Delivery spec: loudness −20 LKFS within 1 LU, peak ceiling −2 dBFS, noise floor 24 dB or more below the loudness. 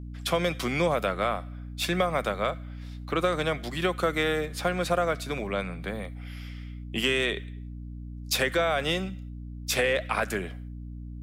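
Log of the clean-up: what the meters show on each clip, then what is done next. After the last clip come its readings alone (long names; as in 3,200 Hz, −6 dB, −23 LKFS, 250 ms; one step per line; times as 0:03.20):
number of dropouts 1; longest dropout 1.7 ms; mains hum 60 Hz; hum harmonics up to 300 Hz; level of the hum −36 dBFS; integrated loudness −28.0 LKFS; sample peak −12.5 dBFS; target loudness −20.0 LKFS
→ repair the gap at 0:06.05, 1.7 ms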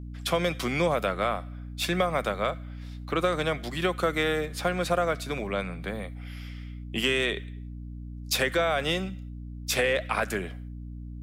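number of dropouts 0; mains hum 60 Hz; hum harmonics up to 300 Hz; level of the hum −36 dBFS
→ mains-hum notches 60/120/180/240/300 Hz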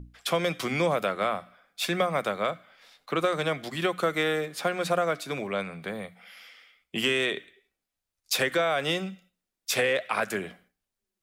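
mains hum none found; integrated loudness −28.0 LKFS; sample peak −12.0 dBFS; target loudness −20.0 LKFS
→ level +8 dB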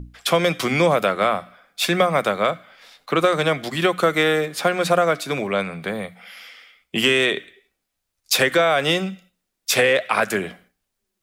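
integrated loudness −20.0 LKFS; sample peak −4.0 dBFS; background noise floor −78 dBFS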